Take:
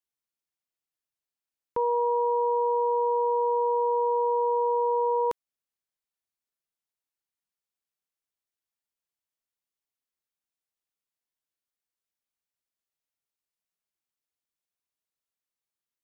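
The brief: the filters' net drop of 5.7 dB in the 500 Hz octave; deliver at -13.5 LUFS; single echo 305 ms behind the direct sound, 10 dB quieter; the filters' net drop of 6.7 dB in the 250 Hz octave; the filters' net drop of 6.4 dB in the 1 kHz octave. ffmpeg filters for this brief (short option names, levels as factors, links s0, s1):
-af "equalizer=f=250:t=o:g=-8.5,equalizer=f=500:t=o:g=-3,equalizer=f=1000:t=o:g=-5.5,aecho=1:1:305:0.316,volume=8.41"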